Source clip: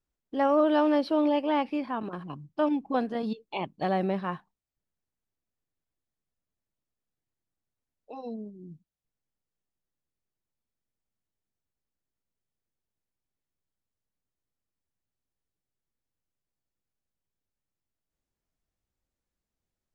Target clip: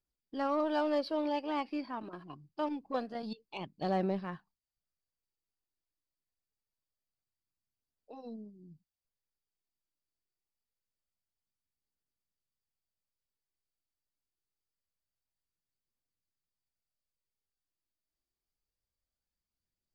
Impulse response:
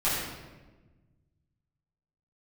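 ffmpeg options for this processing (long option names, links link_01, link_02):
-af "aphaser=in_gain=1:out_gain=1:delay=3.3:decay=0.37:speed=0.25:type=triangular,equalizer=frequency=4700:width_type=o:width=0.22:gain=13,aeval=exprs='0.2*(cos(1*acos(clip(val(0)/0.2,-1,1)))-cos(1*PI/2))+0.00501*(cos(7*acos(clip(val(0)/0.2,-1,1)))-cos(7*PI/2))+0.00158*(cos(8*acos(clip(val(0)/0.2,-1,1)))-cos(8*PI/2))':channel_layout=same,volume=-7.5dB"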